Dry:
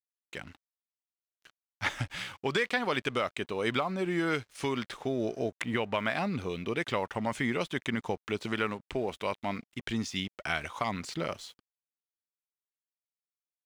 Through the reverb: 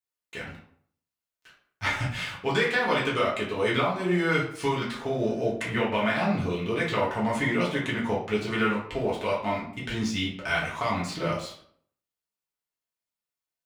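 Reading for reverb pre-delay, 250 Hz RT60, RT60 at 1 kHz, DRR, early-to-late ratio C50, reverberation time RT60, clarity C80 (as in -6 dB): 3 ms, 0.55 s, 0.60 s, -6.0 dB, 5.0 dB, 0.60 s, 9.5 dB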